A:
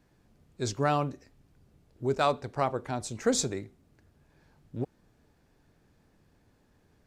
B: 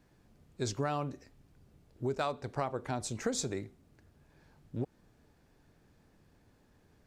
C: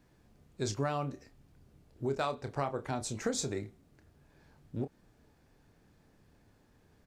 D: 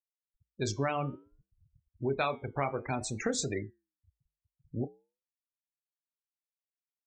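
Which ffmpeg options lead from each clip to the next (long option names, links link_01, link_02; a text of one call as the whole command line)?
ffmpeg -i in.wav -af "acompressor=threshold=-30dB:ratio=5" out.wav
ffmpeg -i in.wav -filter_complex "[0:a]asplit=2[link_01][link_02];[link_02]adelay=29,volume=-10dB[link_03];[link_01][link_03]amix=inputs=2:normalize=0" out.wav
ffmpeg -i in.wav -af "afftfilt=real='re*gte(hypot(re,im),0.01)':imag='im*gte(hypot(re,im),0.01)':win_size=1024:overlap=0.75,flanger=delay=6.2:depth=4.2:regen=-86:speed=0.56:shape=triangular,equalizer=frequency=2300:width=3.1:gain=12,volume=6dB" out.wav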